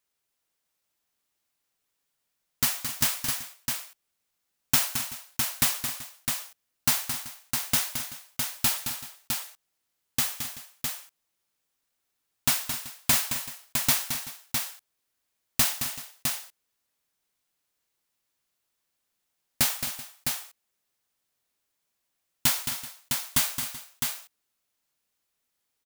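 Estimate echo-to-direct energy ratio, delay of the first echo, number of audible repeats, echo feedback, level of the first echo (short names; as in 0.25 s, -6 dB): -3.5 dB, 0.219 s, 4, no steady repeat, -8.5 dB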